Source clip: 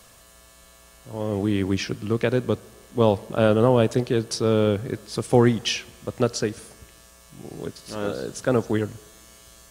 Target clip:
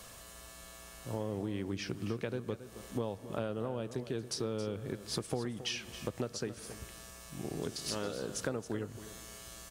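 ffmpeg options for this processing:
ffmpeg -i in.wav -filter_complex "[0:a]asettb=1/sr,asplit=3[link_01][link_02][link_03];[link_01]atrim=end=7.624[link_04];[link_02]atrim=start=7.62:end=8.15,asetpts=PTS-STARTPTS,afade=type=in:duration=0.004:curve=qsin,afade=type=out:start_time=0.526:duration=0.004:curve=qsin,equalizer=frequency=5900:width_type=o:width=2.3:gain=6.5[link_05];[link_03]atrim=start=8.146[link_06];[link_04][link_05]acrossfade=duration=0.004:curve1=hsin:curve2=qsin[link_07];[link_07][link_06]acrossfade=duration=0.004:curve1=qsin:curve2=hsin,acompressor=threshold=-33dB:ratio=10,aecho=1:1:273:0.224" out.wav

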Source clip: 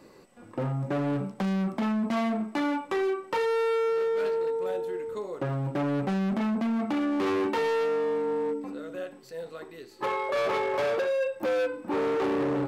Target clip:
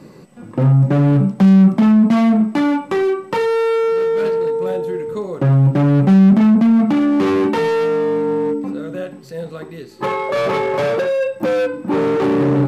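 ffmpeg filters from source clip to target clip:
ffmpeg -i in.wav -af "equalizer=frequency=160:width_type=o:width=1.3:gain=13.5,volume=8dB" -ar 32000 -c:a libmp3lame -b:a 80k out.mp3

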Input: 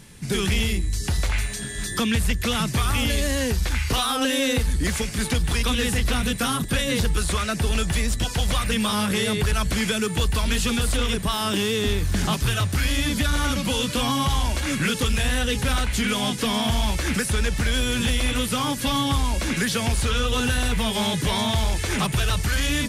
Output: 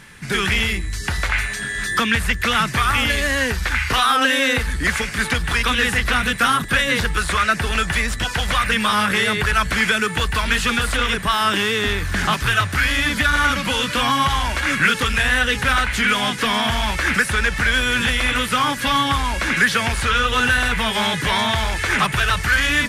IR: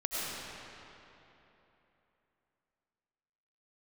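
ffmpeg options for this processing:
-af "equalizer=frequency=1600:width=0.75:gain=14.5,volume=-1.5dB"

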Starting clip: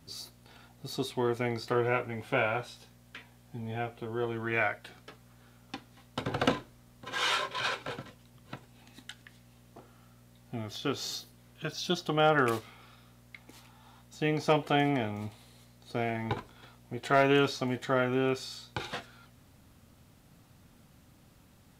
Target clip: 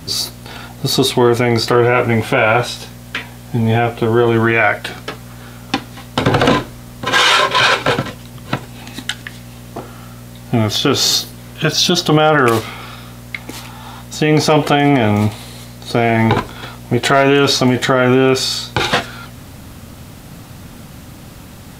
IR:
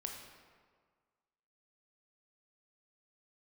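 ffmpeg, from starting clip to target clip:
-af "alimiter=level_in=25dB:limit=-1dB:release=50:level=0:latency=1,volume=-1dB"

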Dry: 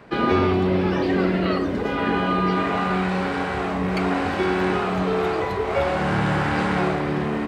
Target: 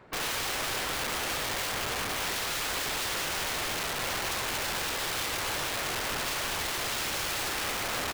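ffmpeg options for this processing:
ffmpeg -i in.wav -filter_complex "[0:a]asplit=2[link_01][link_02];[link_02]aecho=0:1:495|990|1485|1980|2475:0.299|0.131|0.0578|0.0254|0.0112[link_03];[link_01][link_03]amix=inputs=2:normalize=0,asetrate=40517,aresample=44100,asplit=2[link_04][link_05];[link_05]aecho=0:1:228|332|339|846:0.398|0.501|0.158|0.133[link_06];[link_04][link_06]amix=inputs=2:normalize=0,aeval=exprs='(mod(10.6*val(0)+1,2)-1)/10.6':channel_layout=same,equalizer=frequency=210:width_type=o:width=1.1:gain=-5,volume=-6.5dB" out.wav

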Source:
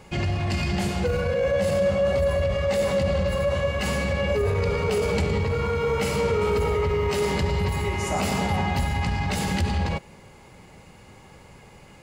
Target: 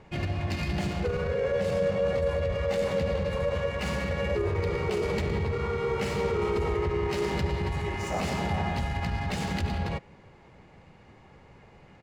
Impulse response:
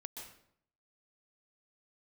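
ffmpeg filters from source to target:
-filter_complex "[0:a]asplit=2[link_01][link_02];[link_02]asetrate=37084,aresample=44100,atempo=1.18921,volume=-6dB[link_03];[link_01][link_03]amix=inputs=2:normalize=0,adynamicsmooth=sensitivity=7:basefreq=3700,volume=-5.5dB"

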